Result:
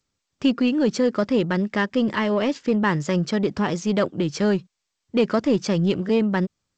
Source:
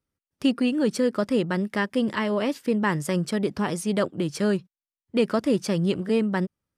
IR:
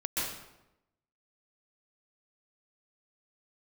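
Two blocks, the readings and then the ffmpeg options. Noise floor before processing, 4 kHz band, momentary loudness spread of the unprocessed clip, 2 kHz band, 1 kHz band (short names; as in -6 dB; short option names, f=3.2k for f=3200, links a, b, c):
under -85 dBFS, +2.5 dB, 3 LU, +2.5 dB, +3.0 dB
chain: -filter_complex "[0:a]asplit=2[a][b];[b]asoftclip=type=tanh:threshold=-22dB,volume=-4.5dB[c];[a][c]amix=inputs=2:normalize=0" -ar 16000 -c:a g722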